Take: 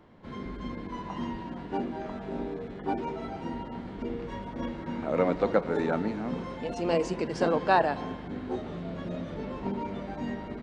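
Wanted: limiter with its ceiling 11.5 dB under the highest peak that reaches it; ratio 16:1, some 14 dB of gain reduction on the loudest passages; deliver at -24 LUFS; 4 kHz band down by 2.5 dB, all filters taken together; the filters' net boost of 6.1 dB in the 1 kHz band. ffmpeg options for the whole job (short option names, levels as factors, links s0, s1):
-af "equalizer=f=1000:t=o:g=8,equalizer=f=4000:t=o:g=-4,acompressor=threshold=0.0501:ratio=16,volume=4.22,alimiter=limit=0.188:level=0:latency=1"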